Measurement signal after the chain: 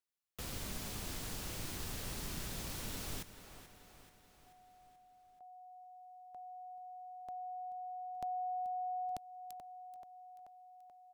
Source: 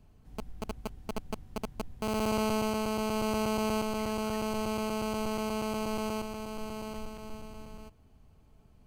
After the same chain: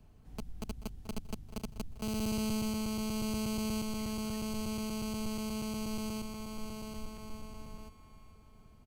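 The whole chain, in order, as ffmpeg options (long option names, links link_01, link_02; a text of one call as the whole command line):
ffmpeg -i in.wav -filter_complex "[0:a]asplit=2[link_01][link_02];[link_02]aecho=0:1:433|866|1299|1732|2165:0.178|0.096|0.0519|0.028|0.0151[link_03];[link_01][link_03]amix=inputs=2:normalize=0,acrossover=split=300|3000[link_04][link_05][link_06];[link_05]acompressor=threshold=-54dB:ratio=2[link_07];[link_04][link_07][link_06]amix=inputs=3:normalize=0" out.wav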